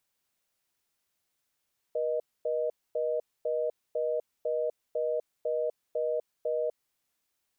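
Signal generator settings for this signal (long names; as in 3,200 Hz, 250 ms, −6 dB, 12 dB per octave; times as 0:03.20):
call progress tone reorder tone, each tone −29.5 dBFS 4.96 s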